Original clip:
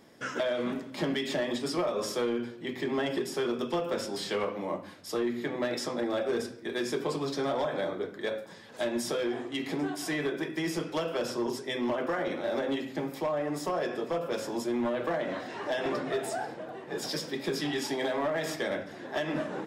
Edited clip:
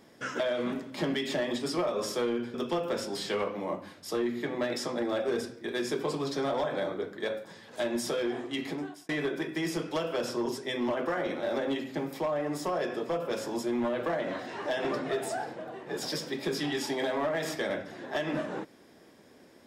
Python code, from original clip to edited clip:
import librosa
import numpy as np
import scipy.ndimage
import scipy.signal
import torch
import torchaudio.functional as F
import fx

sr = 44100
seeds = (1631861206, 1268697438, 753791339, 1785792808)

y = fx.edit(x, sr, fx.cut(start_s=2.54, length_s=1.01),
    fx.fade_out_span(start_s=9.62, length_s=0.48), tone=tone)